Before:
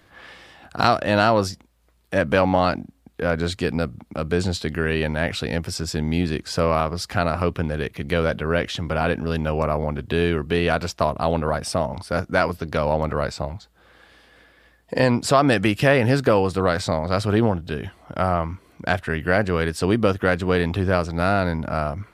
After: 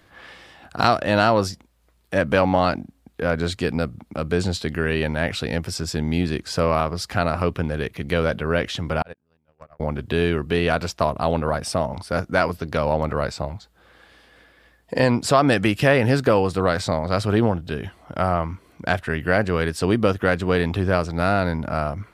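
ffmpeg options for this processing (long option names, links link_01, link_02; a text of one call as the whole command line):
ffmpeg -i in.wav -filter_complex "[0:a]asettb=1/sr,asplit=3[link_01][link_02][link_03];[link_01]atrim=end=9.024[link_04];[link_02]atrim=start=9.02:end=9.8,asetpts=PTS-STARTPTS,afade=type=in:duration=0.004:curve=qsin,afade=type=out:start_time=0.776:duration=0.004:curve=qsin,agate=range=-47dB:threshold=-18dB:ratio=16:release=100:detection=peak[link_05];[link_03]atrim=start=9.796[link_06];[link_04][link_05]acrossfade=duration=0.004:curve1=hsin:curve2=qsin[link_07];[link_07][link_06]acrossfade=duration=0.004:curve1=qsin:curve2=hsin" out.wav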